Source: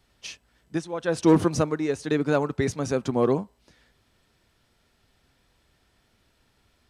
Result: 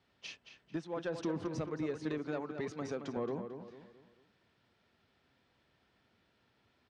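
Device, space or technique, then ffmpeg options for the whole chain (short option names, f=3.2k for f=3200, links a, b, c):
AM radio: -filter_complex "[0:a]highpass=110,lowpass=4k,acompressor=threshold=-27dB:ratio=5,asoftclip=type=tanh:threshold=-21.5dB,asettb=1/sr,asplit=3[a][b][c];[a]atrim=end=2.184[d];[b]atrim=start=2.18:end=3.17,asetpts=PTS-STARTPTS,afade=t=in:d=0.004:c=qsin,afade=t=out:st=0.986:d=0.004:c=qsin,highpass=f=230:p=1[e];[c]atrim=start=3.166[f];[d][e]acrossfade=d=0.004:c1=hsin:c2=qsin[g];[g][f]acrossfade=d=0.004:c1=qsin:c2=hsin,asplit=2[h][i];[i]adelay=222,lowpass=f=3.7k:p=1,volume=-8dB,asplit=2[j][k];[k]adelay=222,lowpass=f=3.7k:p=1,volume=0.39,asplit=2[l][m];[m]adelay=222,lowpass=f=3.7k:p=1,volume=0.39,asplit=2[n][o];[o]adelay=222,lowpass=f=3.7k:p=1,volume=0.39[p];[h][j][l][n][p]amix=inputs=5:normalize=0,volume=-5.5dB"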